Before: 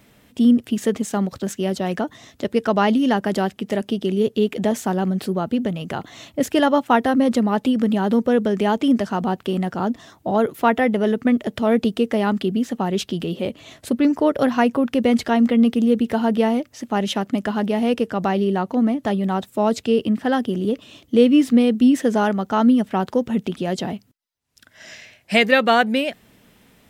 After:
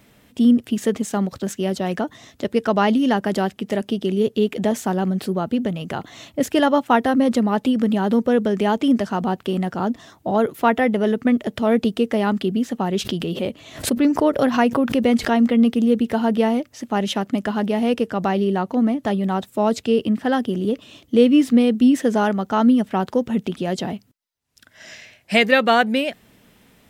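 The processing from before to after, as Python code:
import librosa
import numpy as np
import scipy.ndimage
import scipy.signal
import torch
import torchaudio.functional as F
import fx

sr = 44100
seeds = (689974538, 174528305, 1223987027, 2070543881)

y = fx.pre_swell(x, sr, db_per_s=130.0, at=(12.96, 15.31), fade=0.02)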